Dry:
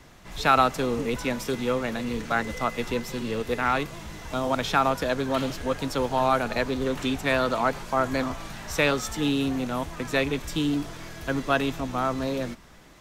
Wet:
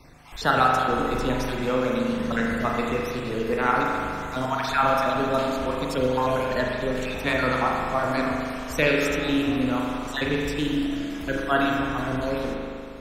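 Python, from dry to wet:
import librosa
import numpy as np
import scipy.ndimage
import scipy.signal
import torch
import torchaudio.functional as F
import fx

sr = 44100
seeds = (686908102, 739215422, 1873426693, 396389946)

y = fx.spec_dropout(x, sr, seeds[0], share_pct=40)
y = fx.rev_spring(y, sr, rt60_s=2.4, pass_ms=(39,), chirp_ms=40, drr_db=-2.0)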